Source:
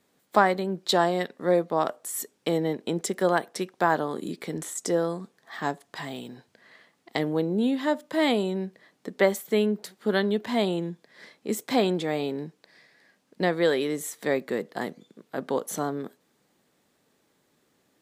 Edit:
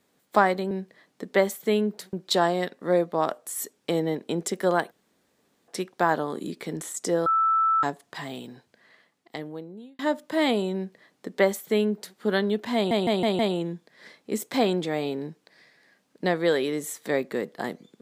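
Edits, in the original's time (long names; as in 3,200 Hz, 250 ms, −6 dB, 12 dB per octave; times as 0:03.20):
0:03.49: splice in room tone 0.77 s
0:05.07–0:05.64: beep over 1,320 Hz −18.5 dBFS
0:06.19–0:07.80: fade out
0:08.56–0:09.98: duplicate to 0:00.71
0:10.56: stutter 0.16 s, 5 plays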